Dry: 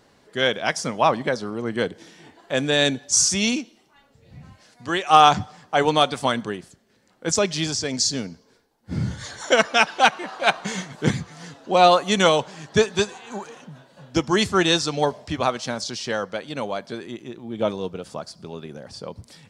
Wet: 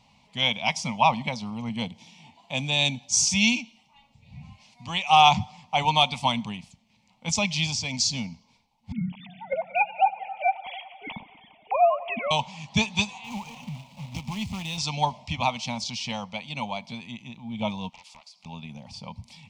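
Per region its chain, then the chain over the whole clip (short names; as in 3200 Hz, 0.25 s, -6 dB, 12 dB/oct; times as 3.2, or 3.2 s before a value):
1.69–3.27 HPF 81 Hz + bell 1700 Hz -4 dB 1.7 oct
8.92–12.31 sine-wave speech + treble ducked by the level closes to 850 Hz, closed at -12.5 dBFS + multi-head echo 92 ms, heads all three, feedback 54%, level -23 dB
13.24–14.78 low shelf 460 Hz +9 dB + compressor 3:1, threshold -31 dBFS + companded quantiser 4-bit
17.89–18.46 HPF 1100 Hz + compressor 12:1, threshold -41 dBFS + Doppler distortion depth 0.8 ms
whole clip: EQ curve 230 Hz 0 dB, 360 Hz -26 dB, 920 Hz +4 dB, 1600 Hz -25 dB, 2300 Hz +6 dB, 4200 Hz -2 dB, 6100 Hz -3 dB, 11000 Hz -12 dB; negative-ratio compressor -14 dBFS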